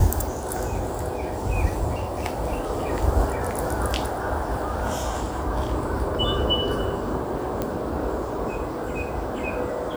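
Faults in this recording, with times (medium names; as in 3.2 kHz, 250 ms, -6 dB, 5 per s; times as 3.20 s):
7.62 s: pop -12 dBFS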